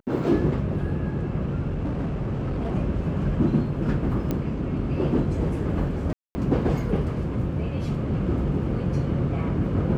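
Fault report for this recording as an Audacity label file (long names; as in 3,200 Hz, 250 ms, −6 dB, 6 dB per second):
1.690000	2.760000	clipping −23.5 dBFS
4.310000	4.310000	click −14 dBFS
6.130000	6.350000	drop-out 220 ms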